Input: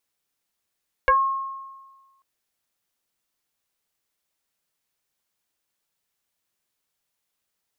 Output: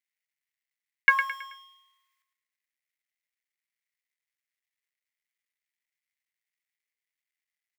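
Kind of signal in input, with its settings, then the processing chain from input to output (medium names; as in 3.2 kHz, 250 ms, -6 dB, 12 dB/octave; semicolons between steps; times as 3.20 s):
FM tone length 1.14 s, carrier 1.08 kHz, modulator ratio 0.52, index 2, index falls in 0.15 s exponential, decay 1.38 s, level -12.5 dB
companding laws mixed up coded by A; resonant high-pass 2 kHz, resonance Q 6.7; feedback delay 108 ms, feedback 39%, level -8.5 dB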